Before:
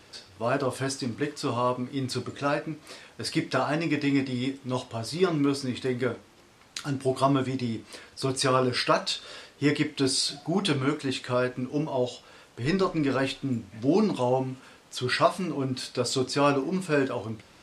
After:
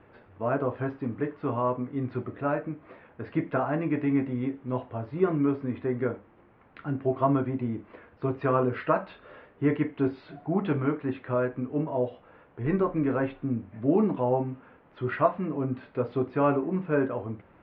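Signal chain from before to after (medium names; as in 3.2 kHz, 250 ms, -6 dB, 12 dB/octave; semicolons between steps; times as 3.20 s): Bessel low-pass 1.4 kHz, order 6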